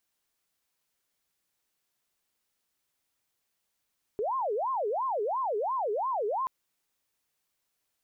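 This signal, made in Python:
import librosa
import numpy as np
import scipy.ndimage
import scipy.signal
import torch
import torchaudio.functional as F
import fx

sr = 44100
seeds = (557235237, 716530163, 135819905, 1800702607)

y = fx.siren(sr, length_s=2.28, kind='wail', low_hz=406.0, high_hz=1070.0, per_s=2.9, wave='sine', level_db=-27.0)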